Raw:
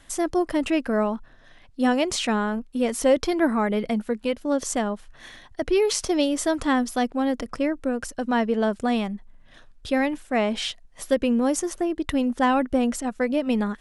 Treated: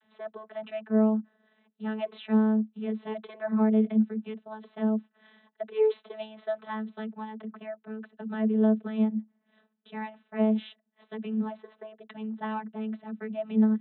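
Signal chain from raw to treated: vocoder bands 32, saw 217 Hz; Chebyshev low-pass 4 kHz, order 10; trim -3.5 dB

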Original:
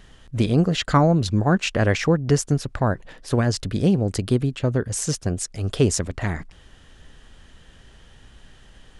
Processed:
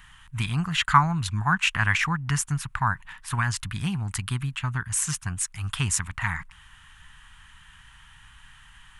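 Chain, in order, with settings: FFT filter 150 Hz 0 dB, 530 Hz -28 dB, 940 Hz +10 dB, 2.7 kHz +9 dB, 4.9 kHz -2 dB, 9.6 kHz +10 dB; trim -5 dB

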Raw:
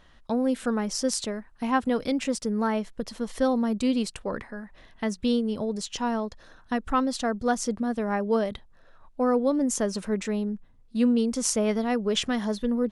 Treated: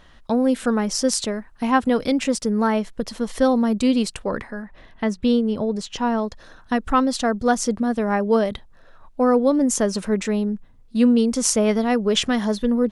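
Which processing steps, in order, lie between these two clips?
4.62–6.18 s: treble shelf 4.6 kHz -10 dB; trim +6 dB

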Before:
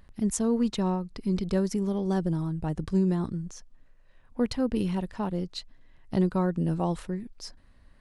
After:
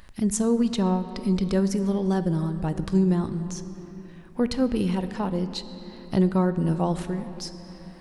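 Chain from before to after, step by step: on a send at -11 dB: reverberation RT60 3.1 s, pre-delay 6 ms; on the sum: tape noise reduction on one side only encoder only; trim +3 dB

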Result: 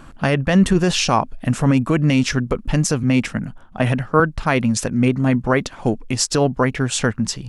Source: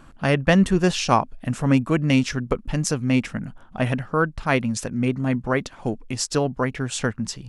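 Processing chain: loudness maximiser +11 dB; 3.03–4.20 s: three bands expanded up and down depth 40%; trim -4.5 dB

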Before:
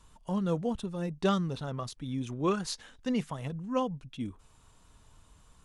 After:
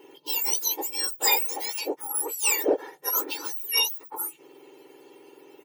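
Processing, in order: spectrum inverted on a logarithmic axis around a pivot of 1.7 kHz; comb 2.2 ms, depth 67%; in parallel at -7 dB: saturation -28.5 dBFS, distortion -13 dB; on the sum: trim +7 dB

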